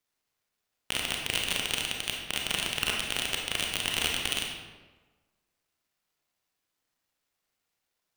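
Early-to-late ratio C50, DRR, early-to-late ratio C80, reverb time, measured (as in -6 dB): 2.0 dB, -0.5 dB, 4.5 dB, 1.3 s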